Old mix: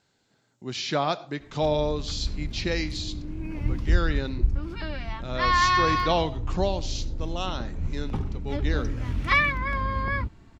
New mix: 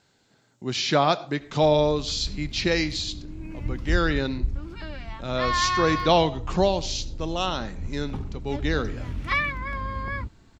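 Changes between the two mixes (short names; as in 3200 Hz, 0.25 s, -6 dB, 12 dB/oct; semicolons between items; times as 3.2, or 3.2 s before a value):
speech +5.0 dB; background -3.5 dB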